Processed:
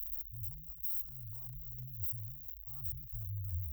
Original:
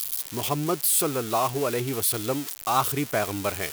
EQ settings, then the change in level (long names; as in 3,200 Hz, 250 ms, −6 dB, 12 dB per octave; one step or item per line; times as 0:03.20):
inverse Chebyshev band-stop filter 160–9,300 Hz, stop band 50 dB
bass and treble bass +15 dB, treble −9 dB
notch filter 1,700 Hz, Q 9.2
+3.0 dB